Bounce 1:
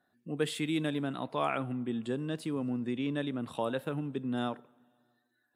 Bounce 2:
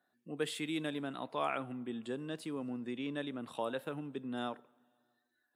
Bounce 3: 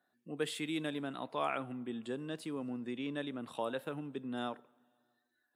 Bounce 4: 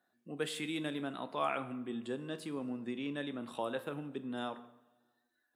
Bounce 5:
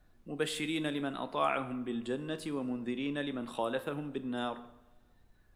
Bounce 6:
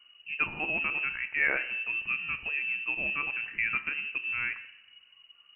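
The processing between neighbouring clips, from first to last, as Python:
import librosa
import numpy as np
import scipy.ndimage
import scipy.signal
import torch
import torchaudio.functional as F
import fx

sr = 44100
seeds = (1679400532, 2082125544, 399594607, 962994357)

y1 = fx.highpass(x, sr, hz=290.0, slope=6)
y1 = y1 * 10.0 ** (-3.0 / 20.0)
y2 = y1
y3 = fx.rev_fdn(y2, sr, rt60_s=0.91, lf_ratio=1.1, hf_ratio=0.75, size_ms=85.0, drr_db=10.0)
y4 = fx.dmg_noise_colour(y3, sr, seeds[0], colour='brown', level_db=-67.0)
y4 = y4 * 10.0 ** (3.5 / 20.0)
y5 = fx.freq_invert(y4, sr, carrier_hz=2900)
y5 = y5 * 10.0 ** (3.5 / 20.0)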